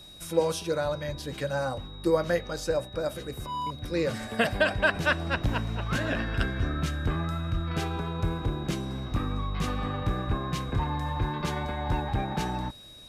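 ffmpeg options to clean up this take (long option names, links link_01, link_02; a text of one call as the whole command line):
ffmpeg -i in.wav -af "bandreject=frequency=3800:width=30" out.wav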